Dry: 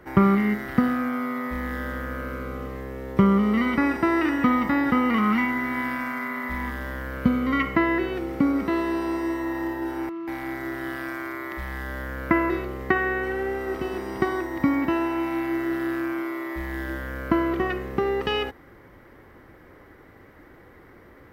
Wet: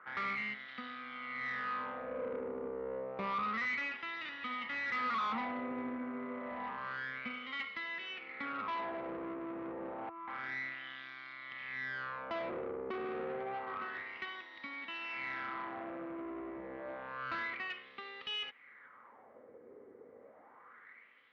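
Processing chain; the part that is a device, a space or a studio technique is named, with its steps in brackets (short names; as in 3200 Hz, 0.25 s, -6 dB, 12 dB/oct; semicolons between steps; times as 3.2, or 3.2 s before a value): wah-wah guitar rig (wah 0.29 Hz 410–3800 Hz, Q 4; tube stage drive 39 dB, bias 0.45; speaker cabinet 84–4100 Hz, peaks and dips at 230 Hz +9 dB, 340 Hz -6 dB, 480 Hz +4 dB, 1200 Hz +5 dB, 2200 Hz +5 dB); gain +2.5 dB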